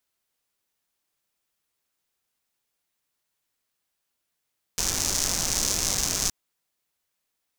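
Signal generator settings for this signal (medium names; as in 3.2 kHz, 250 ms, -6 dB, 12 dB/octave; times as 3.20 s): rain from filtered ticks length 1.52 s, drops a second 200, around 6.1 kHz, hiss -5 dB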